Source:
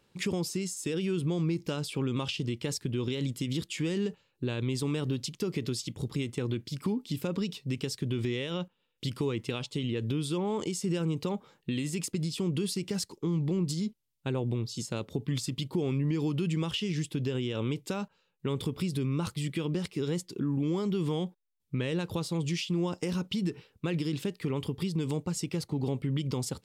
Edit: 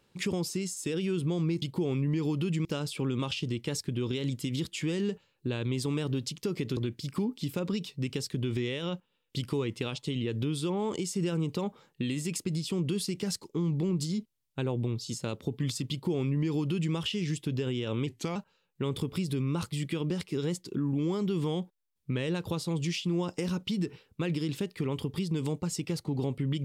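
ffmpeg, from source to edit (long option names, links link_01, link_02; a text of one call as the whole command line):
ffmpeg -i in.wav -filter_complex "[0:a]asplit=6[link_01][link_02][link_03][link_04][link_05][link_06];[link_01]atrim=end=1.622[link_07];[link_02]atrim=start=15.588:end=16.622[link_08];[link_03]atrim=start=1.618:end=5.742[link_09];[link_04]atrim=start=6.448:end=17.754[link_10];[link_05]atrim=start=17.75:end=18,asetpts=PTS-STARTPTS,asetrate=38367,aresample=44100,atrim=end_sample=12672,asetpts=PTS-STARTPTS[link_11];[link_06]atrim=start=17.996[link_12];[link_07][link_08]acrossfade=duration=0.004:curve1=hsin:curve2=hsin[link_13];[link_13][link_09]acrossfade=duration=0.004:curve1=hsin:curve2=hsin[link_14];[link_14][link_10]acrossfade=duration=0.004:curve1=hsin:curve2=hsin[link_15];[link_15][link_11]acrossfade=duration=0.004:curve1=hsin:curve2=hsin[link_16];[link_16][link_12]acrossfade=duration=0.004:curve1=hsin:curve2=hsin" out.wav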